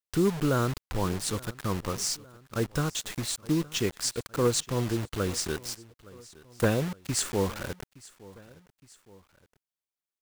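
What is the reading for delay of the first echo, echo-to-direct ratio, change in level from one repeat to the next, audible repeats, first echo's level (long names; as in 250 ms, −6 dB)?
866 ms, −20.5 dB, −5.5 dB, 2, −21.5 dB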